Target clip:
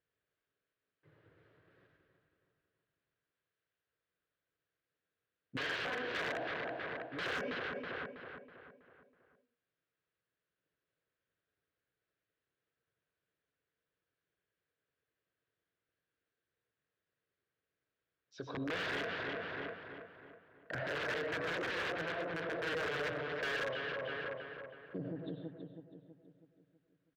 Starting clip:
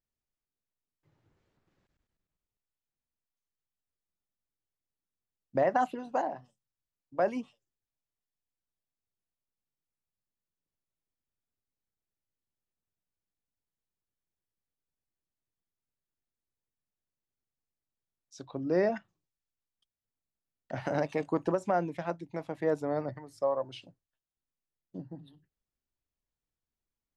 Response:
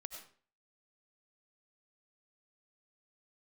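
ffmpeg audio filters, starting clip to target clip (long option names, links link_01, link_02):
-filter_complex "[1:a]atrim=start_sample=2205,afade=type=out:start_time=0.27:duration=0.01,atrim=end_sample=12348[link_01];[0:a][link_01]afir=irnorm=-1:irlink=0,acontrast=75,aeval=exprs='(mod(20*val(0)+1,2)-1)/20':channel_layout=same,highpass=100,equalizer=frequency=220:width_type=q:width=4:gain=-9,equalizer=frequency=460:width_type=q:width=4:gain=8,equalizer=frequency=840:width_type=q:width=4:gain=-7,equalizer=frequency=1600:width_type=q:width=4:gain=9,lowpass=frequency=3700:width=0.5412,lowpass=frequency=3700:width=1.3066,asplit=2[link_02][link_03];[link_03]adelay=324,lowpass=frequency=2900:poles=1,volume=-7dB,asplit=2[link_04][link_05];[link_05]adelay=324,lowpass=frequency=2900:poles=1,volume=0.47,asplit=2[link_06][link_07];[link_07]adelay=324,lowpass=frequency=2900:poles=1,volume=0.47,asplit=2[link_08][link_09];[link_09]adelay=324,lowpass=frequency=2900:poles=1,volume=0.47,asplit=2[link_10][link_11];[link_11]adelay=324,lowpass=frequency=2900:poles=1,volume=0.47,asplit=2[link_12][link_13];[link_13]adelay=324,lowpass=frequency=2900:poles=1,volume=0.47[link_14];[link_02][link_04][link_06][link_08][link_10][link_12][link_14]amix=inputs=7:normalize=0,asoftclip=type=hard:threshold=-25dB,alimiter=level_in=11.5dB:limit=-24dB:level=0:latency=1:release=28,volume=-11.5dB,volume=3.5dB"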